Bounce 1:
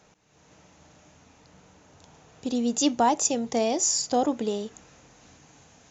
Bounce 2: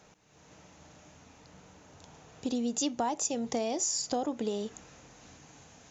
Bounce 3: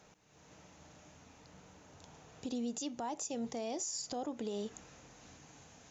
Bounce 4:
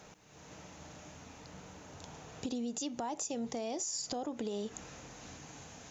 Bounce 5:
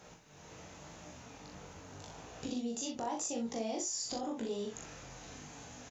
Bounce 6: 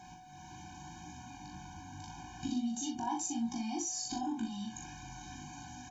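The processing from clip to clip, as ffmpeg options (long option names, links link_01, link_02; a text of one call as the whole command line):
ffmpeg -i in.wav -af "acompressor=threshold=-29dB:ratio=4" out.wav
ffmpeg -i in.wav -af "alimiter=level_in=3dB:limit=-24dB:level=0:latency=1:release=139,volume=-3dB,volume=-3dB" out.wav
ffmpeg -i in.wav -af "acompressor=threshold=-42dB:ratio=4,volume=7dB" out.wav
ffmpeg -i in.wav -filter_complex "[0:a]flanger=delay=16.5:depth=6:speed=0.87,asplit=2[link_01][link_02];[link_02]aecho=0:1:40|64:0.631|0.316[link_03];[link_01][link_03]amix=inputs=2:normalize=0,volume=1.5dB" out.wav
ffmpeg -i in.wav -af "aeval=exprs='val(0)+0.00158*sin(2*PI*740*n/s)':channel_layout=same,afftfilt=real='re*eq(mod(floor(b*sr/1024/360),2),0)':imag='im*eq(mod(floor(b*sr/1024/360),2),0)':win_size=1024:overlap=0.75,volume=3.5dB" out.wav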